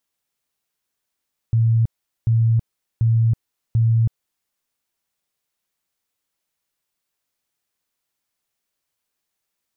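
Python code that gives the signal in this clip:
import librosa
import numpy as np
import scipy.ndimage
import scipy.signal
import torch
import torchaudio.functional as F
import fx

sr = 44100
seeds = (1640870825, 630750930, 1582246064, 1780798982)

y = fx.tone_burst(sr, hz=114.0, cycles=37, every_s=0.74, bursts=4, level_db=-13.0)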